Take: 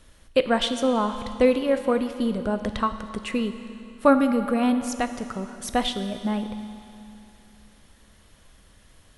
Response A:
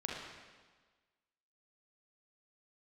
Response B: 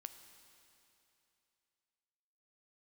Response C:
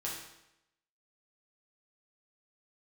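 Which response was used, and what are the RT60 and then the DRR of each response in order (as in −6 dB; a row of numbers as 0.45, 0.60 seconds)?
B; 1.4, 2.9, 0.85 seconds; −3.0, 8.5, −5.5 decibels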